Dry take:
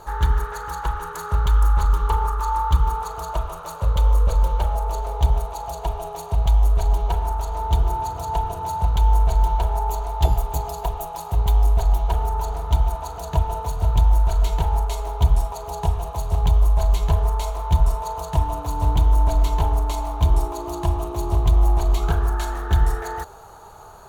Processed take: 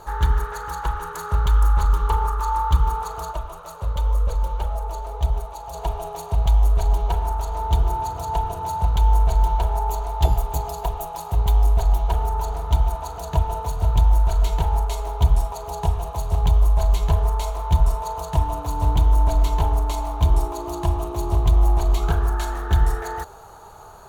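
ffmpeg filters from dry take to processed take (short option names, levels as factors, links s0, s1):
-filter_complex "[0:a]asplit=3[s0][s1][s2];[s0]afade=t=out:st=3.31:d=0.02[s3];[s1]flanger=delay=1.5:depth=2:regen=69:speed=1.9:shape=sinusoidal,afade=t=in:st=3.31:d=0.02,afade=t=out:st=5.73:d=0.02[s4];[s2]afade=t=in:st=5.73:d=0.02[s5];[s3][s4][s5]amix=inputs=3:normalize=0"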